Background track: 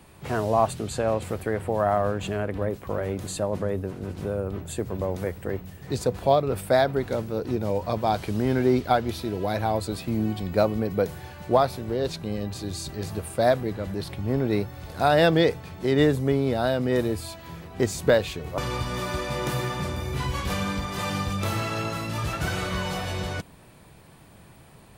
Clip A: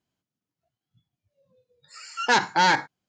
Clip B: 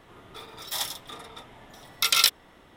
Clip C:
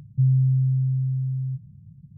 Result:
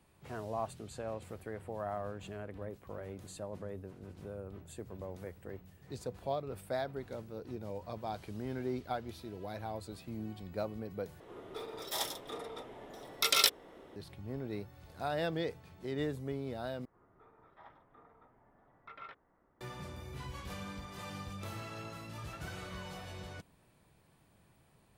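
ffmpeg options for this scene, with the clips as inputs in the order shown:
ffmpeg -i bed.wav -i cue0.wav -i cue1.wav -filter_complex "[2:a]asplit=2[link_01][link_02];[0:a]volume=-16dB[link_03];[link_01]equalizer=frequency=440:width=0.87:gain=13[link_04];[link_02]lowpass=frequency=1600:width=0.5412,lowpass=frequency=1600:width=1.3066[link_05];[link_03]asplit=3[link_06][link_07][link_08];[link_06]atrim=end=11.204[link_09];[link_04]atrim=end=2.76,asetpts=PTS-STARTPTS,volume=-7dB[link_10];[link_07]atrim=start=13.956:end=16.854[link_11];[link_05]atrim=end=2.76,asetpts=PTS-STARTPTS,volume=-16.5dB[link_12];[link_08]atrim=start=19.606[link_13];[link_09][link_10]acrossfade=duration=0.004:curve1=hsin:curve2=hsin[link_14];[link_14][link_11]acrossfade=duration=0.004:curve1=hsin:curve2=hsin[link_15];[link_15][link_12]acrossfade=duration=0.004:curve1=hsin:curve2=hsin[link_16];[link_16][link_13]acrossfade=duration=0.004:curve1=hsin:curve2=hsin" out.wav

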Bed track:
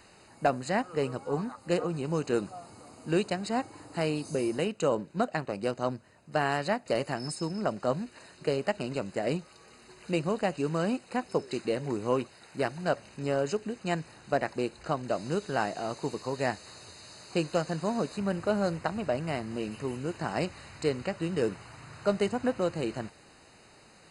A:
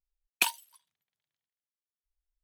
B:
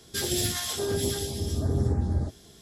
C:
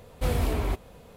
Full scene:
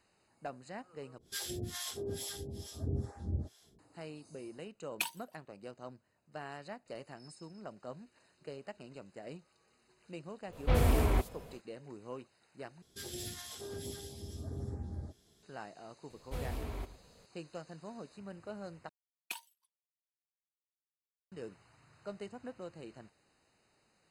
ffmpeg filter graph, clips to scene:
ffmpeg -i bed.wav -i cue0.wav -i cue1.wav -i cue2.wav -filter_complex "[2:a]asplit=2[link_01][link_02];[1:a]asplit=2[link_03][link_04];[3:a]asplit=2[link_05][link_06];[0:a]volume=-17dB[link_07];[link_01]acrossover=split=610[link_08][link_09];[link_08]aeval=exprs='val(0)*(1-1/2+1/2*cos(2*PI*2.3*n/s))':channel_layout=same[link_10];[link_09]aeval=exprs='val(0)*(1-1/2-1/2*cos(2*PI*2.3*n/s))':channel_layout=same[link_11];[link_10][link_11]amix=inputs=2:normalize=0[link_12];[link_05]acrossover=split=4400[link_13][link_14];[link_14]adelay=70[link_15];[link_13][link_15]amix=inputs=2:normalize=0[link_16];[link_06]aecho=1:1:110:0.188[link_17];[link_04]agate=range=-33dB:threshold=-59dB:ratio=3:release=100:detection=peak[link_18];[link_07]asplit=4[link_19][link_20][link_21][link_22];[link_19]atrim=end=1.184[link_23];[link_12]atrim=end=2.61,asetpts=PTS-STARTPTS,volume=-8dB[link_24];[link_20]atrim=start=3.786:end=12.824[link_25];[link_02]atrim=end=2.61,asetpts=PTS-STARTPTS,volume=-15.5dB[link_26];[link_21]atrim=start=15.426:end=18.894[link_27];[link_18]atrim=end=2.43,asetpts=PTS-STARTPTS,volume=-16dB[link_28];[link_22]atrim=start=21.316[link_29];[link_03]atrim=end=2.43,asetpts=PTS-STARTPTS,volume=-9dB,afade=type=in:duration=0.004:curve=hsin,afade=type=out:start_time=2.426:duration=0.004:curve=hsin,adelay=4590[link_30];[link_16]atrim=end=1.16,asetpts=PTS-STARTPTS,volume=-1dB,afade=type=in:duration=0.1,afade=type=out:start_time=1.06:duration=0.1,adelay=10460[link_31];[link_17]atrim=end=1.16,asetpts=PTS-STARTPTS,volume=-13.5dB,afade=type=in:duration=0.004:curve=hsin,afade=type=out:start_time=1.156:duration=0.004:curve=hsin,adelay=16100[link_32];[link_23][link_24]acrossfade=duration=0.004:curve1=hsin:curve2=hsin[link_33];[link_33][link_25]acrossfade=duration=0.004:curve1=hsin:curve2=hsin[link_34];[link_34][link_26]acrossfade=duration=0.004:curve1=hsin:curve2=hsin[link_35];[link_35][link_27]acrossfade=duration=0.004:curve1=hsin:curve2=hsin[link_36];[link_36][link_28]acrossfade=duration=0.004:curve1=hsin:curve2=hsin[link_37];[link_37][link_29]acrossfade=duration=0.004:curve1=hsin:curve2=hsin[link_38];[link_38][link_30][link_31][link_32]amix=inputs=4:normalize=0" out.wav

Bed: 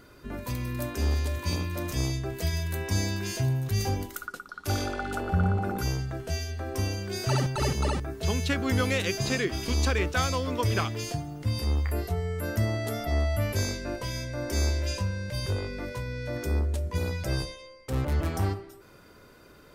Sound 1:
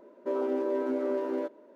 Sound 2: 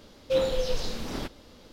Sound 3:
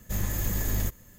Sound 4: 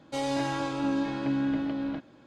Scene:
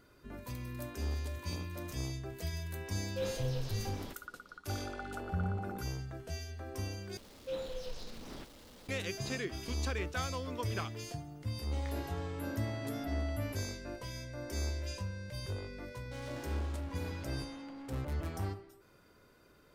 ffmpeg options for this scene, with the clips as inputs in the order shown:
ffmpeg -i bed.wav -i cue0.wav -i cue1.wav -i cue2.wav -i cue3.wav -filter_complex "[2:a]asplit=2[link_01][link_02];[4:a]asplit=2[link_03][link_04];[0:a]volume=-10dB[link_05];[link_02]aeval=exprs='val(0)+0.5*0.015*sgn(val(0))':channel_layout=same[link_06];[link_04]volume=36dB,asoftclip=hard,volume=-36dB[link_07];[link_05]asplit=2[link_08][link_09];[link_08]atrim=end=7.174[link_10];[link_06]atrim=end=1.72,asetpts=PTS-STARTPTS,volume=-15dB[link_11];[link_09]atrim=start=8.886[link_12];[link_01]atrim=end=1.72,asetpts=PTS-STARTPTS,volume=-12.5dB,afade=type=in:duration=0.004:curve=hsin,afade=type=out:start_time=1.716:duration=0.004:curve=hsin,adelay=2860[link_13];[link_03]atrim=end=2.26,asetpts=PTS-STARTPTS,volume=-14.5dB,afade=type=in:duration=0.004:curve=hsin,afade=type=out:start_time=2.256:duration=0.004:curve=hsin,adelay=11590[link_14];[link_07]atrim=end=2.26,asetpts=PTS-STARTPTS,volume=-10dB,afade=type=in:duration=0.004:curve=hsin,afade=type=out:start_time=2.256:duration=0.004:curve=hsin,adelay=15990[link_15];[link_10][link_11]acrossfade=duration=0.004:curve1=hsin:curve2=hsin[link_16];[link_16][link_12]acrossfade=duration=0.004:curve1=hsin:curve2=hsin[link_17];[link_17][link_13][link_14][link_15]amix=inputs=4:normalize=0" out.wav

